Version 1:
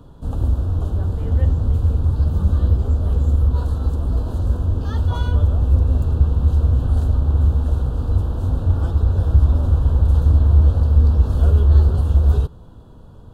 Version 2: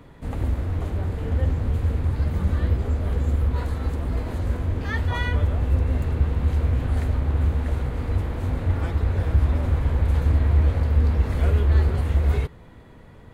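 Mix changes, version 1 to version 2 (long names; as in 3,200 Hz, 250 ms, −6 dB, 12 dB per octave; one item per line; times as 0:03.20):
background: remove Butterworth band-reject 2,100 Hz, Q 1.3
master: add low-shelf EQ 140 Hz −7.5 dB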